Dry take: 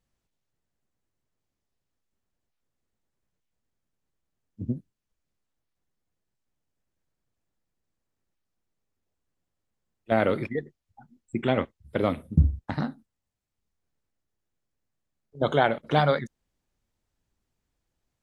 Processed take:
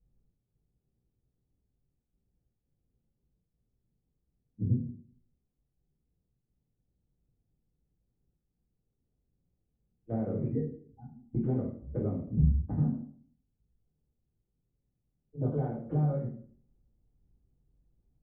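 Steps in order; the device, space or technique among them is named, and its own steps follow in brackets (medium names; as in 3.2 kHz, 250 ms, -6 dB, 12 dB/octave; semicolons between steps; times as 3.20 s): television next door (compression 3:1, threshold -35 dBFS, peak gain reduction 16 dB; low-pass 310 Hz 12 dB/octave; reverberation RT60 0.55 s, pre-delay 3 ms, DRR -9.5 dB)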